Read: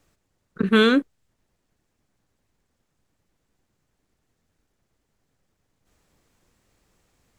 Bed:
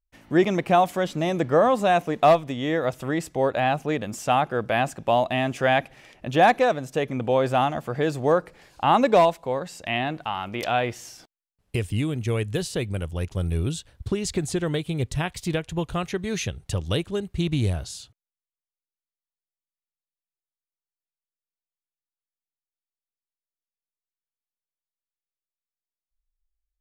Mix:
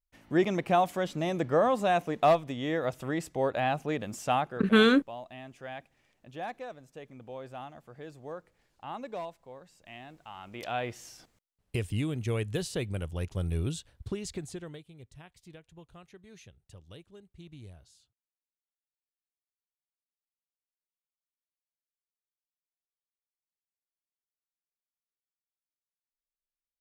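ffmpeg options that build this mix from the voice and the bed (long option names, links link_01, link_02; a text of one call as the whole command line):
ffmpeg -i stem1.wav -i stem2.wav -filter_complex "[0:a]adelay=4000,volume=-4dB[link_01];[1:a]volume=9.5dB,afade=type=out:start_time=4.35:duration=0.33:silence=0.177828,afade=type=in:start_time=10.18:duration=1.05:silence=0.16788,afade=type=out:start_time=13.67:duration=1.21:silence=0.112202[link_02];[link_01][link_02]amix=inputs=2:normalize=0" out.wav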